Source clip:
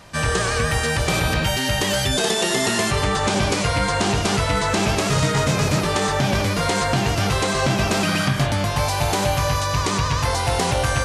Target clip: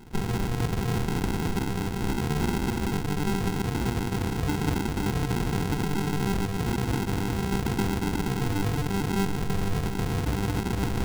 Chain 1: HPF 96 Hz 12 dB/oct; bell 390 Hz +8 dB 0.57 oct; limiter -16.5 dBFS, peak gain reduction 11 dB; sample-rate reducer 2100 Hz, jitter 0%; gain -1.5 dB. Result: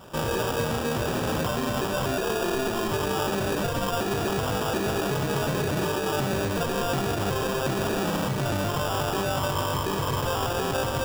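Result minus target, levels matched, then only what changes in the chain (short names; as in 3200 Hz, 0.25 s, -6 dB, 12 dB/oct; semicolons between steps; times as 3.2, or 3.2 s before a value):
sample-rate reducer: distortion -16 dB
change: sample-rate reducer 590 Hz, jitter 0%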